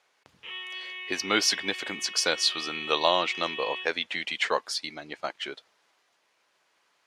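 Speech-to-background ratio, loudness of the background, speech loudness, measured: 9.0 dB, -36.5 LUFS, -27.5 LUFS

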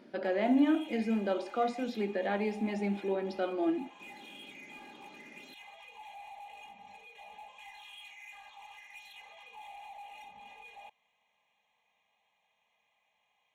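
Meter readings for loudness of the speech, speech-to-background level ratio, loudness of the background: -32.0 LUFS, 18.0 dB, -50.0 LUFS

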